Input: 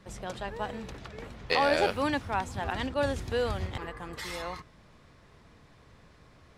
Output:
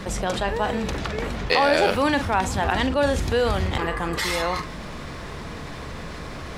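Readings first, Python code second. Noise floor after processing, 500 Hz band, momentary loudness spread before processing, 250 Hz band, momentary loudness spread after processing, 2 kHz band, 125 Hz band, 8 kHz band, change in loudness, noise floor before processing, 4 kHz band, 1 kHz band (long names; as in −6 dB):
−35 dBFS, +8.0 dB, 16 LU, +9.5 dB, 16 LU, +9.0 dB, +10.0 dB, +12.5 dB, +8.0 dB, −58 dBFS, +9.0 dB, +8.5 dB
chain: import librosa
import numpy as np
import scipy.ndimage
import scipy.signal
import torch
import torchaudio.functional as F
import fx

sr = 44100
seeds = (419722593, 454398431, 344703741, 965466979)

y = fx.peak_eq(x, sr, hz=110.0, db=-9.0, octaves=0.28)
y = fx.doubler(y, sr, ms=42.0, db=-13.5)
y = fx.env_flatten(y, sr, amount_pct=50)
y = y * librosa.db_to_amplitude(5.0)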